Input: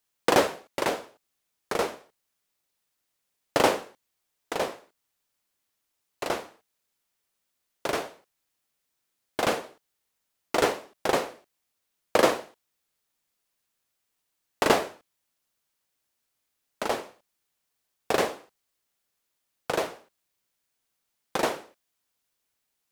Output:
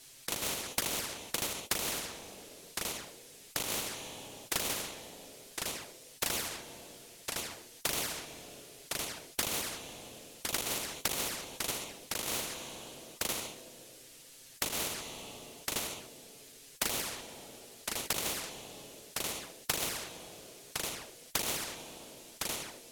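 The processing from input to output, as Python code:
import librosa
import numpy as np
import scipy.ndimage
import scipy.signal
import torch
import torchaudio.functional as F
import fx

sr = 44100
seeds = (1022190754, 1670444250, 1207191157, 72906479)

p1 = fx.level_steps(x, sr, step_db=10)
p2 = x + (p1 * 10.0 ** (1.5 / 20.0))
p3 = fx.env_flanger(p2, sr, rest_ms=7.6, full_db=-20.0)
p4 = fx.quant_float(p3, sr, bits=2)
p5 = fx.peak_eq(p4, sr, hz=1100.0, db=-10.0, octaves=1.6)
p6 = fx.notch(p5, sr, hz=760.0, q=21.0)
p7 = p6 + fx.echo_single(p6, sr, ms=1060, db=-17.0, dry=0)
p8 = fx.rev_double_slope(p7, sr, seeds[0], early_s=0.38, late_s=2.2, knee_db=-18, drr_db=19.5)
p9 = fx.over_compress(p8, sr, threshold_db=-31.0, ratio=-1.0)
p10 = scipy.signal.sosfilt(scipy.signal.butter(2, 12000.0, 'lowpass', fs=sr, output='sos'), p9)
y = fx.spectral_comp(p10, sr, ratio=4.0)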